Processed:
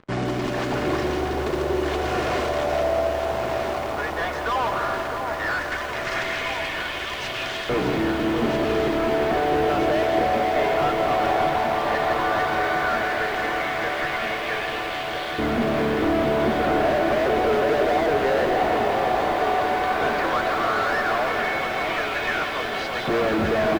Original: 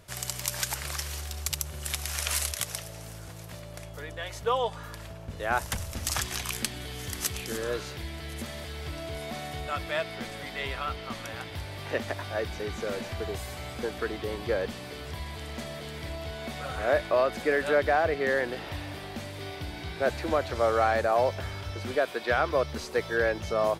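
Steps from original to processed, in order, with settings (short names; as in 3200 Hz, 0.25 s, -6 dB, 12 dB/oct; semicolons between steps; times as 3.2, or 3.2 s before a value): tracing distortion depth 0.088 ms; tilt -2.5 dB/oct; comb 2.8 ms, depth 34%; in parallel at -11.5 dB: bit-crush 6-bit; on the sum: LFO high-pass saw up 0.13 Hz 220–3300 Hz; fuzz box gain 39 dB, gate -48 dBFS; tape spacing loss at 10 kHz 27 dB; echo with dull and thin repeats by turns 0.645 s, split 1100 Hz, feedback 86%, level -6 dB; on a send at -16 dB: reverb RT60 2.5 s, pre-delay 4 ms; on the sum: lo-fi delay 0.165 s, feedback 80%, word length 6-bit, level -9.5 dB; gain -6.5 dB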